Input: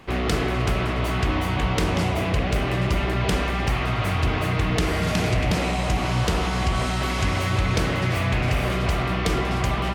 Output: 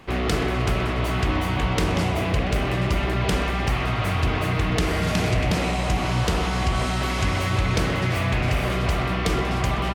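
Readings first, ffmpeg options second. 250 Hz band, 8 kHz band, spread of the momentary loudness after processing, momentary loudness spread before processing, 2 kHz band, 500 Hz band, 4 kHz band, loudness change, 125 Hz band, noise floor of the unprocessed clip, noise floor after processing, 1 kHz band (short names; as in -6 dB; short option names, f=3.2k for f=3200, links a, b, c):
0.0 dB, 0.0 dB, 1 LU, 2 LU, 0.0 dB, 0.0 dB, 0.0 dB, 0.0 dB, 0.0 dB, -25 dBFS, -25 dBFS, 0.0 dB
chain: -af "aecho=1:1:126:0.112"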